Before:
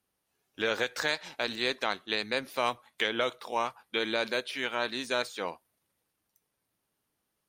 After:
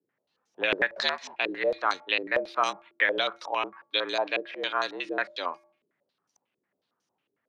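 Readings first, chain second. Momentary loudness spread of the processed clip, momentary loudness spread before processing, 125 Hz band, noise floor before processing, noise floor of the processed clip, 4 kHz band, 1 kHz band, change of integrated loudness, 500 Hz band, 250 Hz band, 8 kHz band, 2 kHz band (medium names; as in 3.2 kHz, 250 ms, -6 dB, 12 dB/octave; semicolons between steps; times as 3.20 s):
6 LU, 3 LU, no reading, -82 dBFS, -82 dBFS, +1.5 dB, +4.0 dB, +3.0 dB, +2.0 dB, -0.5 dB, -3.5 dB, +4.0 dB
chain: de-hum 262 Hz, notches 9; frequency shift +80 Hz; step-sequenced low-pass 11 Hz 390–6000 Hz; trim -1 dB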